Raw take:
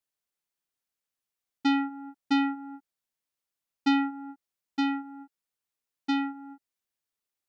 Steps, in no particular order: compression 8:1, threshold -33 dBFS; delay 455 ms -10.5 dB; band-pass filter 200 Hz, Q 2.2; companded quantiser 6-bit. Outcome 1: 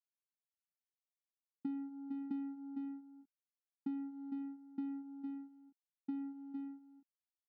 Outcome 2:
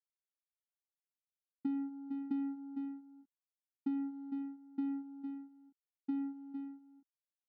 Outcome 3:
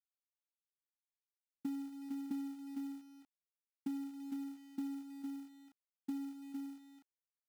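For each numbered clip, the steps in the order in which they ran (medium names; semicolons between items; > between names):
delay > companded quantiser > compression > band-pass filter; delay > companded quantiser > band-pass filter > compression; delay > compression > band-pass filter > companded quantiser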